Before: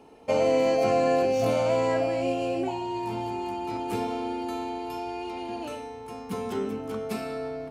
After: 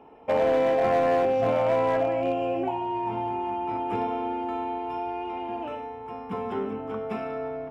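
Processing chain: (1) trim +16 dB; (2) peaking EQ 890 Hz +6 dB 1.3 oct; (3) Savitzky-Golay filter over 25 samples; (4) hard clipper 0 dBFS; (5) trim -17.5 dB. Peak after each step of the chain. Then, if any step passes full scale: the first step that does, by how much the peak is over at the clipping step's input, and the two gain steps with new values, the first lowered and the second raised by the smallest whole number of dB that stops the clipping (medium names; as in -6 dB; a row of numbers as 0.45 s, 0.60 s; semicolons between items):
+3.5 dBFS, +6.5 dBFS, +6.5 dBFS, 0.0 dBFS, -17.5 dBFS; step 1, 6.5 dB; step 1 +9 dB, step 5 -10.5 dB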